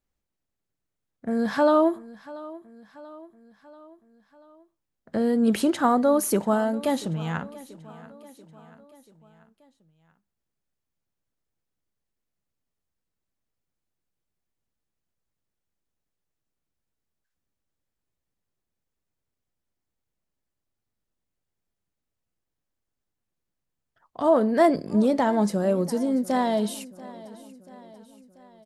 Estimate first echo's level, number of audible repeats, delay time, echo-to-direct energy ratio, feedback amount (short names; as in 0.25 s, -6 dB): -19.5 dB, 3, 0.686 s, -18.0 dB, 55%